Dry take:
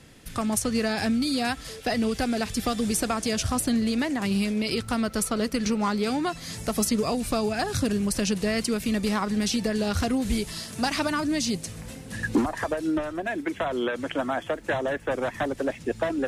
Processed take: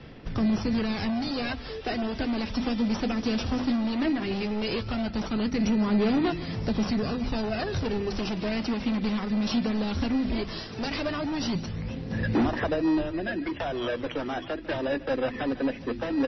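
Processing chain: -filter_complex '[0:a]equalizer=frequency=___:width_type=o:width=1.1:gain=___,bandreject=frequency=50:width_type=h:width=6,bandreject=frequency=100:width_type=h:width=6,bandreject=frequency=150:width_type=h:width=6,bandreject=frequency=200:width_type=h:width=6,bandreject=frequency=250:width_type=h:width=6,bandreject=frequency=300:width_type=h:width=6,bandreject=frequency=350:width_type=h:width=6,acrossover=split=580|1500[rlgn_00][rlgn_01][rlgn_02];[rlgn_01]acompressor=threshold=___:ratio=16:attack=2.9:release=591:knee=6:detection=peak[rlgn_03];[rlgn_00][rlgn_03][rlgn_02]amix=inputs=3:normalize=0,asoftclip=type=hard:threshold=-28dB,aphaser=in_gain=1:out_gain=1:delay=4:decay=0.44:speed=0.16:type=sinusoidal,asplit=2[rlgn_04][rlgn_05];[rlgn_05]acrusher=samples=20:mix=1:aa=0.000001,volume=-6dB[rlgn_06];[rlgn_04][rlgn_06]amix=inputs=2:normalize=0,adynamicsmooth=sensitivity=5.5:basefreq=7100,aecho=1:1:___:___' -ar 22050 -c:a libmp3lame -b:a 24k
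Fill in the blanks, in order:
5800, -3, -40dB, 150, 0.133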